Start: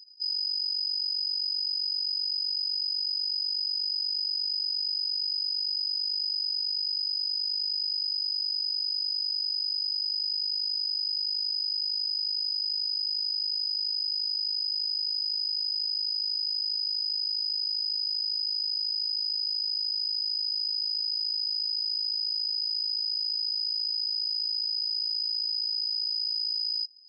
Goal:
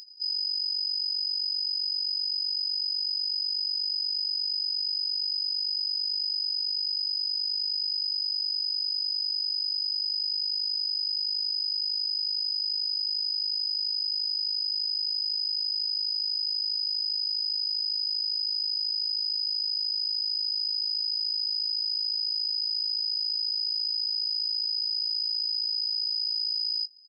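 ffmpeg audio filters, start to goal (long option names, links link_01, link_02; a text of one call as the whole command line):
ffmpeg -i in.wav -filter_complex "[0:a]acompressor=mode=upward:threshold=-43dB:ratio=2.5,asplit=2[link_01][link_02];[link_02]adelay=18,volume=-13dB[link_03];[link_01][link_03]amix=inputs=2:normalize=0" out.wav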